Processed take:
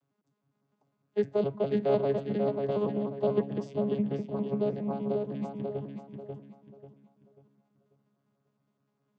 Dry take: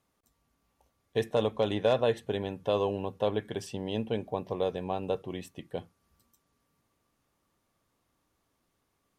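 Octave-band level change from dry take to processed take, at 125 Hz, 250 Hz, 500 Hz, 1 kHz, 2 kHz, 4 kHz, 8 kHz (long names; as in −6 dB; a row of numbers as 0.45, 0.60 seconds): +1.5 dB, +4.5 dB, +0.5 dB, −3.0 dB, −8.0 dB, below −10 dB, below −15 dB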